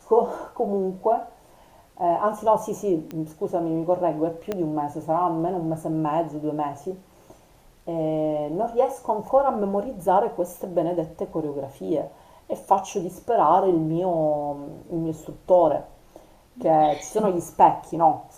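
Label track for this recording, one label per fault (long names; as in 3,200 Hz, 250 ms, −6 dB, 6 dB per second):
3.110000	3.110000	click −20 dBFS
4.520000	4.520000	click −14 dBFS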